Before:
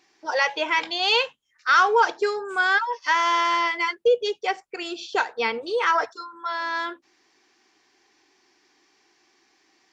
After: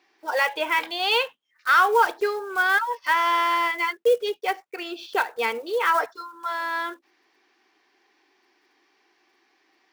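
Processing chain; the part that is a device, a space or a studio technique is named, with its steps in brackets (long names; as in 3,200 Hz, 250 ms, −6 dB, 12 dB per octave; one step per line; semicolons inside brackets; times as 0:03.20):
early digital voice recorder (band-pass filter 270–3,700 Hz; one scale factor per block 5 bits)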